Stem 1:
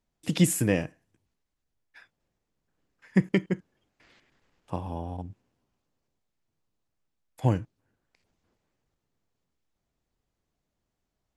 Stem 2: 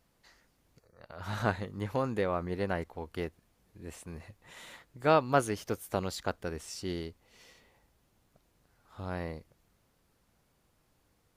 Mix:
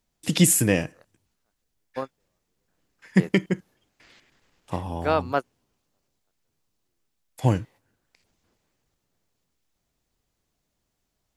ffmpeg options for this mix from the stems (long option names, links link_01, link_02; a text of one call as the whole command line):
ffmpeg -i stem1.wav -i stem2.wav -filter_complex "[0:a]highshelf=frequency=2900:gain=7,volume=3dB,asplit=2[link_01][link_02];[1:a]highpass=190,volume=1.5dB[link_03];[link_02]apad=whole_len=501135[link_04];[link_03][link_04]sidechaingate=range=-52dB:threshold=-47dB:ratio=16:detection=peak[link_05];[link_01][link_05]amix=inputs=2:normalize=0" out.wav